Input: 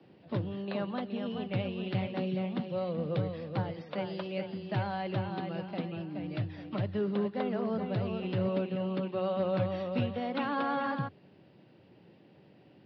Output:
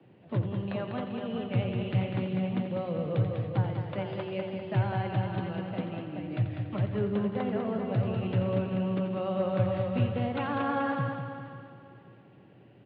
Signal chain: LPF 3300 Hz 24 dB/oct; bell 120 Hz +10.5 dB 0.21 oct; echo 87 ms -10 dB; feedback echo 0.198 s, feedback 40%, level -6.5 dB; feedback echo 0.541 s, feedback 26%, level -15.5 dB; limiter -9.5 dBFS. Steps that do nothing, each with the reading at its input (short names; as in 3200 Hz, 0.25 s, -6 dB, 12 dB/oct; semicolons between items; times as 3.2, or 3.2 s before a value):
limiter -9.5 dBFS: input peak -14.0 dBFS